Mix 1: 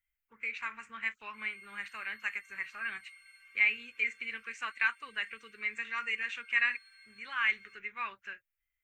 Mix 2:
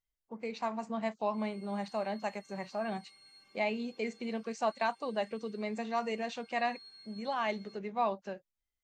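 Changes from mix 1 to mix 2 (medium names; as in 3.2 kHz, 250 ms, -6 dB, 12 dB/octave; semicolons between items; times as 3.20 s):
background: add bass shelf 180 Hz +10 dB; master: remove FFT filter 110 Hz 0 dB, 170 Hz -25 dB, 250 Hz -19 dB, 430 Hz -17 dB, 690 Hz -29 dB, 1.4 kHz +9 dB, 2.4 kHz +13 dB, 4.6 kHz -11 dB, 14 kHz +11 dB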